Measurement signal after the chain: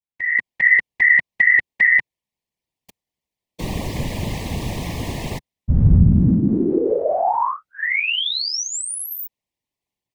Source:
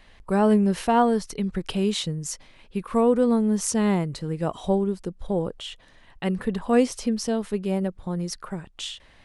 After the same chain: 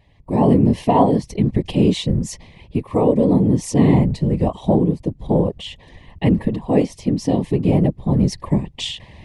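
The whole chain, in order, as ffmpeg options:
-af "asuperstop=centerf=1400:order=8:qfactor=2,equalizer=f=100:t=o:w=1.8:g=9,dynaudnorm=f=220:g=3:m=6.68,afftfilt=real='hypot(re,im)*cos(2*PI*random(0))':imag='hypot(re,im)*sin(2*PI*random(1))':win_size=512:overlap=0.75,highshelf=f=5000:g=-11,volume=1.19"

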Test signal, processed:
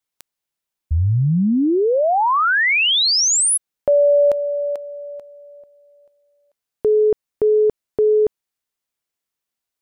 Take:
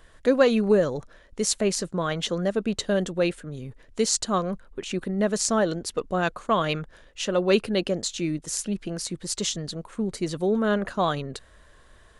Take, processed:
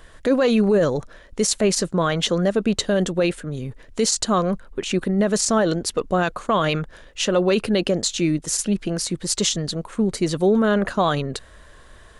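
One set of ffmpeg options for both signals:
-af "alimiter=limit=0.141:level=0:latency=1:release=27,volume=2.24"

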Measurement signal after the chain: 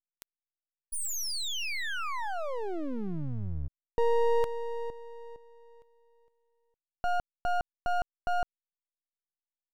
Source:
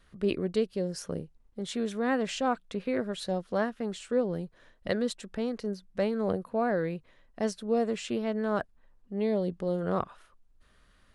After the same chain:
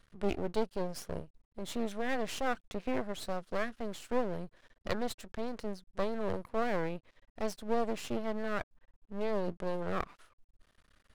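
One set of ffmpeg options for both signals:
-af "aeval=exprs='max(val(0),0)':c=same"

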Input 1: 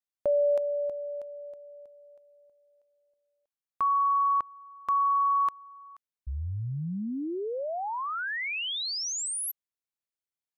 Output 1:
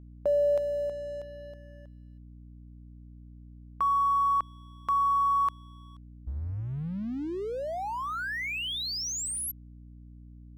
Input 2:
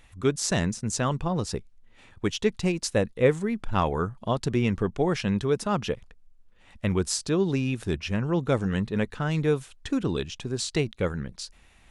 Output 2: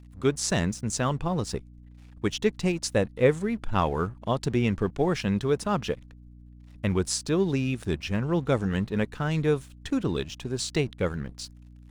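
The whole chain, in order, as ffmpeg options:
-af "aeval=exprs='sgn(val(0))*max(abs(val(0))-0.00282,0)':c=same,aeval=exprs='val(0)+0.00447*(sin(2*PI*60*n/s)+sin(2*PI*2*60*n/s)/2+sin(2*PI*3*60*n/s)/3+sin(2*PI*4*60*n/s)/4+sin(2*PI*5*60*n/s)/5)':c=same"

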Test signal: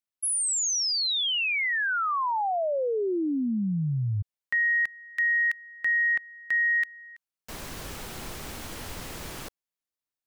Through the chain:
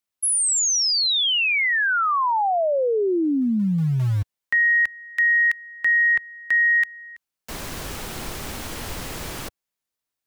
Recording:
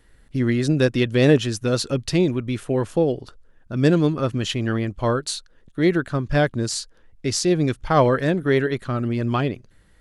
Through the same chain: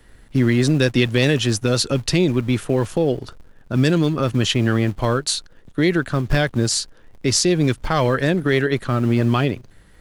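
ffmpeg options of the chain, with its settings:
-filter_complex "[0:a]acrossover=split=100|1800[s0][s1][s2];[s0]acrusher=bits=2:mode=log:mix=0:aa=0.000001[s3];[s1]alimiter=limit=0.168:level=0:latency=1:release=157[s4];[s3][s4][s2]amix=inputs=3:normalize=0,volume=2"

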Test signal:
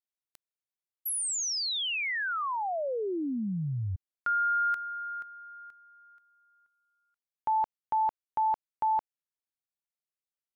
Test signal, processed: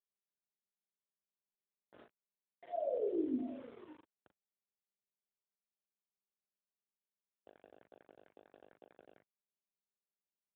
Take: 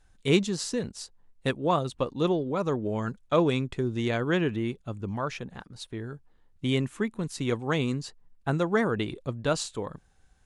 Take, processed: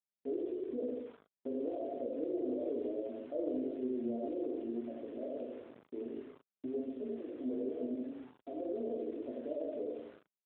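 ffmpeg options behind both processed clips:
-filter_complex "[0:a]asplit=2[s0][s1];[s1]aecho=0:1:86|172|258|344|430|516:0.668|0.314|0.148|0.0694|0.0326|0.0153[s2];[s0][s2]amix=inputs=2:normalize=0,acompressor=threshold=0.0251:ratio=6:attack=75:release=39:knee=1:detection=rms,aresample=8000,asoftclip=type=tanh:threshold=0.0299,aresample=44100,afftfilt=real='re*between(b*sr/4096,230,720)':imag='im*between(b*sr/4096,230,720)':win_size=4096:overlap=0.75,crystalizer=i=2:c=0,flanger=delay=16:depth=4.1:speed=1,aeval=exprs='val(0)*gte(abs(val(0)),0.002)':c=same,asplit=2[s3][s4];[s4]adelay=39,volume=0.501[s5];[s3][s5]amix=inputs=2:normalize=0,volume=1.19" -ar 8000 -c:a libopencore_amrnb -b:a 12200

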